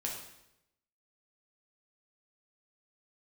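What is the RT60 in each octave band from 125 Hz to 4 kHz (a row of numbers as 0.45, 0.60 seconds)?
1.0, 0.90, 0.90, 0.80, 0.80, 0.75 seconds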